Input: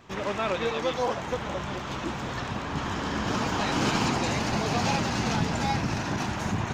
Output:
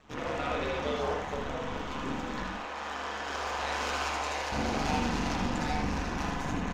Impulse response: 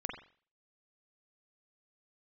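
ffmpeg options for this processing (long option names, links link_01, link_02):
-filter_complex "[0:a]asettb=1/sr,asplit=3[link_01][link_02][link_03];[link_01]atrim=end=2.524[link_04];[link_02]atrim=start=2.52:end=4.52,asetpts=PTS-STARTPTS,afade=type=in:duration=0.004:curve=qsin,afade=type=out:start_time=1.996:duration=0.004:curve=qsin,highpass=frequency=440:width=0.5412,highpass=frequency=440:width=1.3066[link_05];[link_03]atrim=start=4.516[link_06];[link_04][link_05]acrossfade=duration=0.004:curve1=hsin:curve2=qsin[link_07];[link_07][link_06]acrossfade=duration=0.004:curve1=qsin:curve2=hsin,aeval=exprs='(tanh(11.2*val(0)+0.45)-tanh(0.45))/11.2':channel_layout=same,aeval=exprs='val(0)*sin(2*PI*72*n/s)':channel_layout=same,aecho=1:1:80:0.501[link_08];[1:a]atrim=start_sample=2205,atrim=end_sample=3969[link_09];[link_08][link_09]afir=irnorm=-1:irlink=0"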